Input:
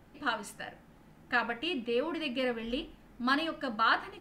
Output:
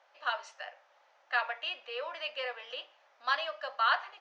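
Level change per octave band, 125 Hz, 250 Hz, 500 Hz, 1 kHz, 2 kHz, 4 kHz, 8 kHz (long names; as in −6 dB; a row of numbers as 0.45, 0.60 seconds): below −40 dB, below −30 dB, −6.0 dB, −0.5 dB, −1.0 dB, 0.0 dB, can't be measured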